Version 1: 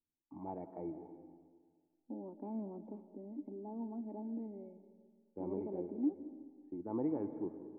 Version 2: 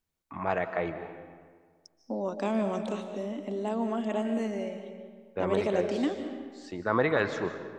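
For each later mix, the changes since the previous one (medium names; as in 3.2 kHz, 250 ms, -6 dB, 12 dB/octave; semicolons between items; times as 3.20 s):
second voice: send +8.5 dB; master: remove cascade formant filter u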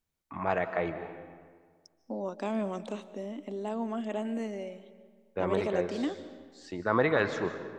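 second voice: send -11.0 dB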